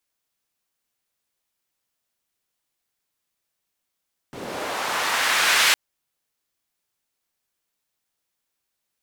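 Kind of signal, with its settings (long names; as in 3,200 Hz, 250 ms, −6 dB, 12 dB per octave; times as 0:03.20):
filter sweep on noise white, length 1.41 s bandpass, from 190 Hz, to 2,100 Hz, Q 1, linear, gain ramp +10.5 dB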